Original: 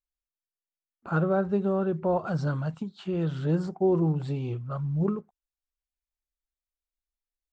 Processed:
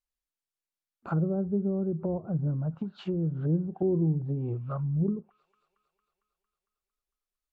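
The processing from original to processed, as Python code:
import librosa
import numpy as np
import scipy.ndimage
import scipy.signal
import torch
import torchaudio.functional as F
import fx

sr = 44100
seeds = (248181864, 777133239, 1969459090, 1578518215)

y = fx.echo_wet_highpass(x, sr, ms=227, feedback_pct=65, hz=1900.0, wet_db=-19)
y = fx.env_lowpass_down(y, sr, base_hz=340.0, full_db=-25.0)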